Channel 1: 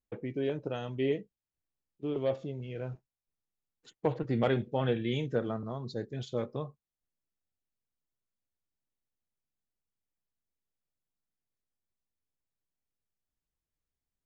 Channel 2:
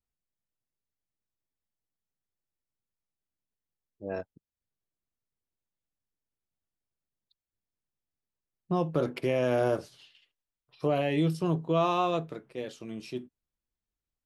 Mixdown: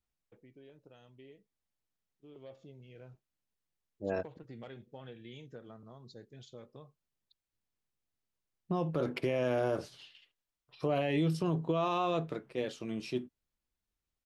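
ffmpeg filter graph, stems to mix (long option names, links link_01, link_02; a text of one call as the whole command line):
ffmpeg -i stem1.wav -i stem2.wav -filter_complex "[0:a]acompressor=threshold=-32dB:ratio=3,adelay=200,volume=-14dB,afade=type=in:start_time=2.22:duration=0.39:silence=0.446684[link_01];[1:a]lowpass=frequency=2700:poles=1,volume=1.5dB[link_02];[link_01][link_02]amix=inputs=2:normalize=0,highshelf=frequency=2800:gain=7.5,alimiter=limit=-22dB:level=0:latency=1:release=82" out.wav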